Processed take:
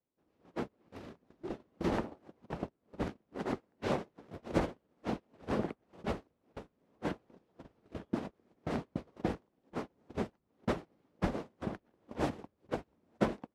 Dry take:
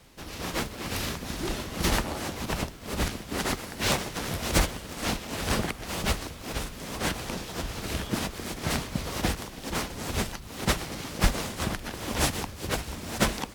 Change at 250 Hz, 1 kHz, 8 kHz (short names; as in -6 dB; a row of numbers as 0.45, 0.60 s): -5.5, -9.0, -27.5 dB